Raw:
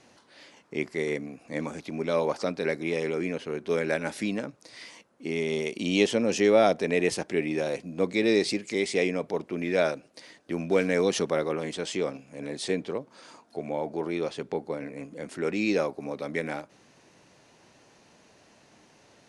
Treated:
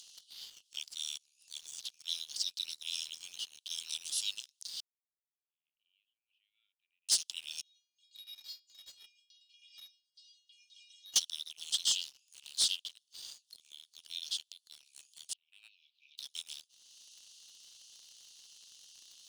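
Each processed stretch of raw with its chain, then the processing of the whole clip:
4.8–7.09 Chebyshev band-pass 660–1400 Hz, order 5 + tremolo 1.1 Hz, depth 83%
7.61–11.16 air absorption 130 m + metallic resonator 390 Hz, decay 0.39 s, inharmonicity 0.002
11.89–12.87 HPF 970 Hz 6 dB/oct + Doppler distortion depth 0.4 ms
15.33–16.18 LPF 2100 Hz 24 dB/oct + negative-ratio compressor -31 dBFS
whole clip: steep high-pass 2900 Hz 96 dB/oct; sample leveller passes 2; upward compressor, threshold -47 dBFS; gain +1.5 dB

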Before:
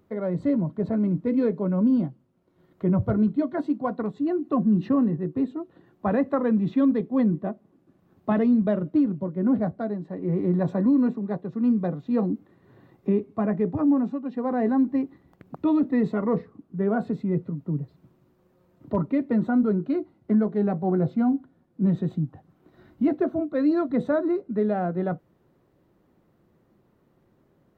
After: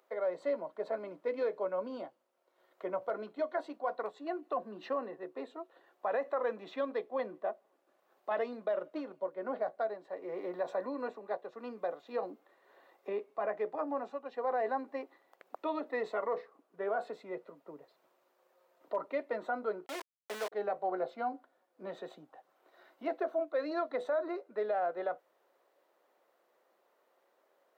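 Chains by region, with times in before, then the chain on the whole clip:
19.86–20.52 low shelf 370 Hz -8.5 dB + sample gate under -33 dBFS + Doppler distortion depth 0.14 ms
whole clip: Chebyshev high-pass 550 Hz, order 3; limiter -24.5 dBFS

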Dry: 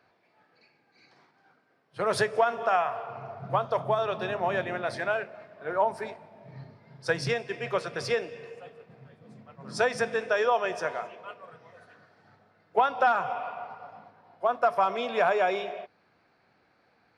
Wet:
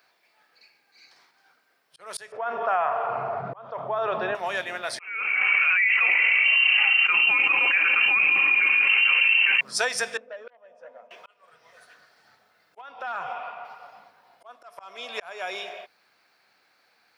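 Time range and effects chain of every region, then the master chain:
2.32–4.35 LPF 1300 Hz + fast leveller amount 70%
4.99–9.61 inverted band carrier 2900 Hz + flange 1.2 Hz, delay 4 ms, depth 1.5 ms, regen -81% + fast leveller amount 100%
10.17–11.11 double band-pass 360 Hz, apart 1.1 oct + core saturation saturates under 1300 Hz
12.81–13.65 tone controls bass +4 dB, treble -13 dB + compressor 4:1, threshold -24 dBFS
whole clip: tilt +4.5 dB/oct; auto swell 0.53 s

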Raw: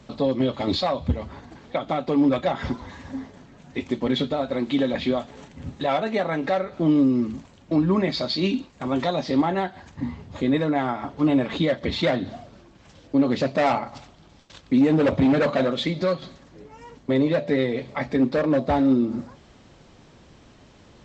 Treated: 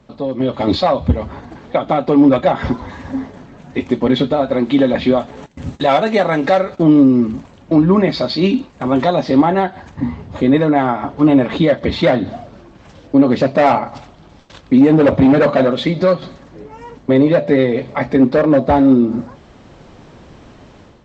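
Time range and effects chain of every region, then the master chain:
5.46–6.83 gate -44 dBFS, range -16 dB + high shelf 4100 Hz +12 dB
whole clip: low shelf 370 Hz -3 dB; AGC gain up to 11.5 dB; high shelf 2200 Hz -9.5 dB; gain +1.5 dB

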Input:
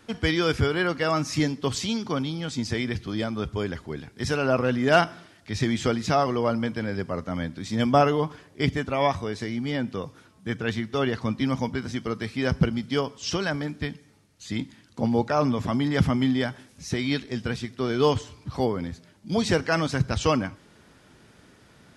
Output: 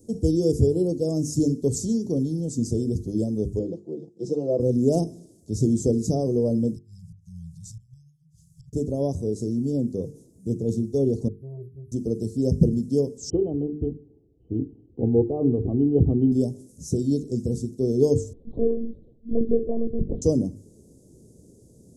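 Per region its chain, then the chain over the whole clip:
3.59–4.6 G.711 law mismatch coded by A + BPF 270–3000 Hz + comb 6 ms, depth 82%
6.75–8.73 flipped gate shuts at -16 dBFS, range -28 dB + compressor 3:1, threshold -36 dBFS + brick-wall FIR band-stop 180–2100 Hz
11.28–11.92 inverse Chebyshev band-stop 320–7600 Hz + metallic resonator 130 Hz, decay 0.29 s, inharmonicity 0.03 + core saturation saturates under 580 Hz
13.3–16.32 brick-wall FIR low-pass 3100 Hz + comb 2.6 ms, depth 60%
18.33–20.22 HPF 150 Hz 24 dB/oct + treble ducked by the level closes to 990 Hz, closed at -23.5 dBFS + monotone LPC vocoder at 8 kHz 230 Hz
whole clip: Chebyshev band-stop 460–6900 Hz, order 3; notches 50/100/150/200/250/300/350/400/450 Hz; gain +5.5 dB

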